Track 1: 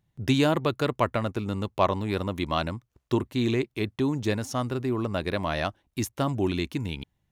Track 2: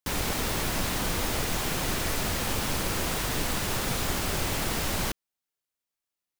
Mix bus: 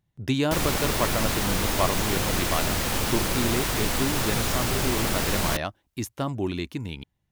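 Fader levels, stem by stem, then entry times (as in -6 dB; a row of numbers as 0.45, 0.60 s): -2.0, +3.0 dB; 0.00, 0.45 s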